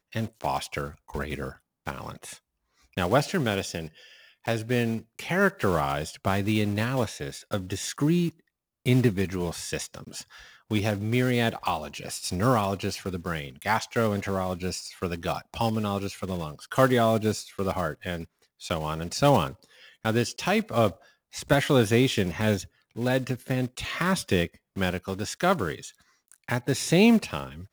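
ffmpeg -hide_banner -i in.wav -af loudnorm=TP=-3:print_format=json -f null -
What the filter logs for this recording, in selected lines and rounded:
"input_i" : "-26.9",
"input_tp" : "-6.6",
"input_lra" : "4.0",
"input_thresh" : "-37.5",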